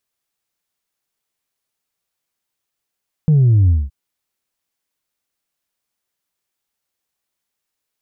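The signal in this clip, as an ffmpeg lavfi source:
ffmpeg -f lavfi -i "aevalsrc='0.355*clip((0.62-t)/0.21,0,1)*tanh(1.12*sin(2*PI*160*0.62/log(65/160)*(exp(log(65/160)*t/0.62)-1)))/tanh(1.12)':duration=0.62:sample_rate=44100" out.wav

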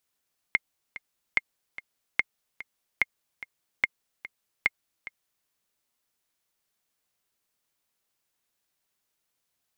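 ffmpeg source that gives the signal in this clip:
ffmpeg -f lavfi -i "aevalsrc='pow(10,(-8-16.5*gte(mod(t,2*60/146),60/146))/20)*sin(2*PI*2130*mod(t,60/146))*exp(-6.91*mod(t,60/146)/0.03)':duration=4.93:sample_rate=44100" out.wav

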